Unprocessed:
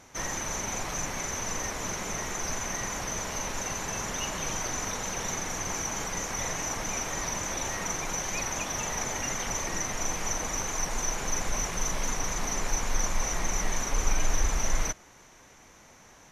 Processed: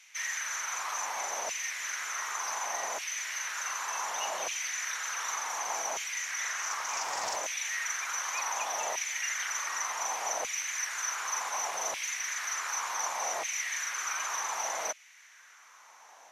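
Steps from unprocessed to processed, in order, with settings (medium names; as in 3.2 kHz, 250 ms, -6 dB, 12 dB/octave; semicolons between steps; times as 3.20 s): LFO high-pass saw down 0.67 Hz 610–2500 Hz; 6.22–7.36 s: loudspeaker Doppler distortion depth 0.18 ms; trim -2.5 dB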